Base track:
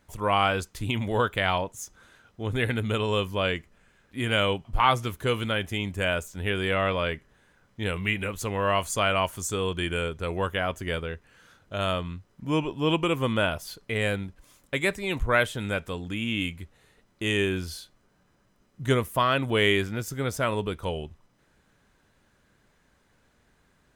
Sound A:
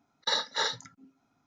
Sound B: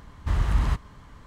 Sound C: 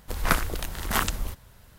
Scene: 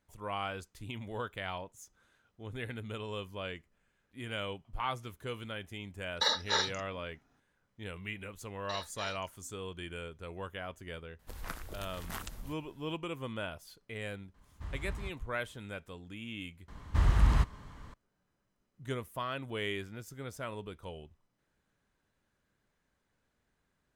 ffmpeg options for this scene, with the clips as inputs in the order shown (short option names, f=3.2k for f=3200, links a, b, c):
-filter_complex "[1:a]asplit=2[a][b];[2:a]asplit=2[c][d];[0:a]volume=-14dB[e];[3:a]acompressor=threshold=-26dB:ratio=6:attack=52:release=160:knee=6:detection=rms[f];[e]asplit=2[g][h];[g]atrim=end=16.684[i];[d]atrim=end=1.26,asetpts=PTS-STARTPTS,volume=-2dB[j];[h]atrim=start=17.936[k];[a]atrim=end=1.46,asetpts=PTS-STARTPTS,volume=-1dB,afade=t=in:d=0.004:c=hsin,afade=t=out:st=1.456:d=0.004:c=hsin,adelay=5940[l];[b]atrim=end=1.46,asetpts=PTS-STARTPTS,volume=-15dB,afade=t=in:d=0.004:c=hsin,afade=t=out:st=1.456:d=0.004:c=hsin,adelay=371322S[m];[f]atrim=end=1.78,asetpts=PTS-STARTPTS,volume=-13dB,afade=t=in:d=0.004:c=hsin,afade=t=out:st=1.776:d=0.004:c=hsin,adelay=11190[n];[c]atrim=end=1.26,asetpts=PTS-STARTPTS,volume=-17.5dB,afade=t=in:d=0.004:c=hsin,afade=t=out:st=1.256:d=0.004:c=hsin,adelay=14340[o];[i][j]acrossfade=d=0.004:c1=hsin:c2=hsin[p];[p][k]acrossfade=d=0.004:c1=hsin:c2=hsin[q];[q][l][m][n][o]amix=inputs=5:normalize=0"